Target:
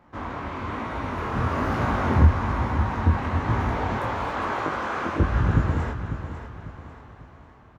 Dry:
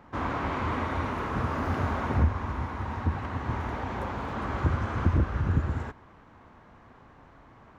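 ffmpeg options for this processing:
ffmpeg -i in.wav -filter_complex "[0:a]asettb=1/sr,asplit=3[link_01][link_02][link_03];[link_01]atrim=end=3.974[link_04];[link_02]atrim=start=3.97:end=5.2,asetpts=PTS-STARTPTS,afade=type=in:duration=0.004:curve=qsin,afade=type=out:start_time=1.226:duration=0.004:curve=qsin,highpass=380[link_05];[link_03]atrim=start=5.196[link_06];[link_04][link_05]acrossfade=duration=0.004:curve1=hsin:curve2=qsin[link_07];[link_07][link_06]acrossfade=duration=0.004:curve1=qsin:curve2=hsin,dynaudnorm=framelen=530:gausssize=5:maxgain=11.5dB,flanger=delay=17:depth=7.6:speed=1.1,aecho=1:1:547|1094|1641|2188:0.316|0.12|0.0457|0.0174" out.wav

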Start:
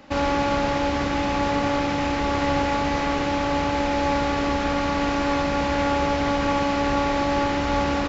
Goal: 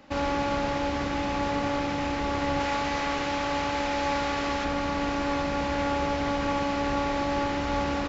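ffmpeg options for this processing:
ffmpeg -i in.wav -filter_complex "[0:a]asettb=1/sr,asplit=3[link_01][link_02][link_03];[link_01]atrim=end=2.604[link_04];[link_02]atrim=start=2.6:end=4.65,asetpts=PTS-STARTPTS,afade=type=in:duration=0.004:curve=qsin,afade=type=out:start_time=2.046:duration=0.004:curve=qsin,tiltshelf=frequency=640:gain=-3.5[link_05];[link_03]atrim=start=4.646[link_06];[link_04][link_05]acrossfade=duration=0.004:curve1=hsin:curve2=qsin[link_07];[link_07][link_06]acrossfade=duration=0.004:curve1=qsin:curve2=hsin,volume=-5dB" out.wav

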